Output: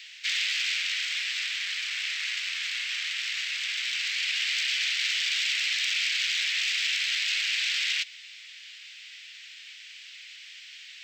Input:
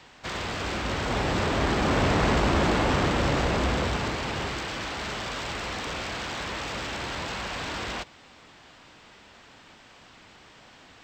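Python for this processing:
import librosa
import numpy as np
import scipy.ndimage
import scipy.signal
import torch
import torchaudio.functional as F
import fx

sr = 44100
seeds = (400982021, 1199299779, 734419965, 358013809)

y = fx.rider(x, sr, range_db=4, speed_s=0.5)
y = scipy.signal.sosfilt(scipy.signal.butter(6, 2100.0, 'highpass', fs=sr, output='sos'), y)
y = fx.peak_eq(y, sr, hz=11000.0, db=-10.0, octaves=1.1)
y = F.gain(torch.from_numpy(y), 8.0).numpy()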